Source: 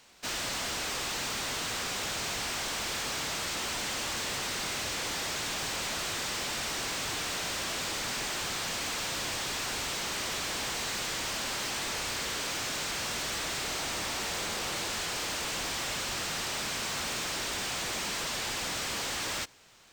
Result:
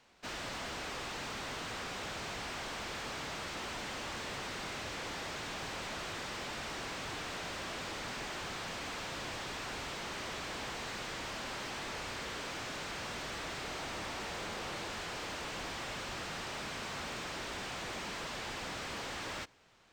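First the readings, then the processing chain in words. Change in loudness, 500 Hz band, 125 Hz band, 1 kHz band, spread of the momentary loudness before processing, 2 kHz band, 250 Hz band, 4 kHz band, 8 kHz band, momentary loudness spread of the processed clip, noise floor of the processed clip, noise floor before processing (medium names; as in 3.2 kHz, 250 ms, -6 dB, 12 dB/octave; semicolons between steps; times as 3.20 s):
-8.0 dB, -4.0 dB, -3.5 dB, -4.5 dB, 0 LU, -6.0 dB, -3.5 dB, -9.5 dB, -13.5 dB, 0 LU, -42 dBFS, -34 dBFS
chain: low-pass 2.2 kHz 6 dB/octave; trim -3.5 dB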